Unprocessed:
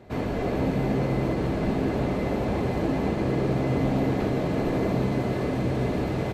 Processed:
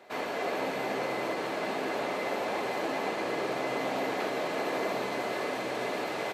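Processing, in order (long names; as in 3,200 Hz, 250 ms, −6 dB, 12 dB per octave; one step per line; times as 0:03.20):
Bessel high-pass filter 810 Hz, order 2
level +3.5 dB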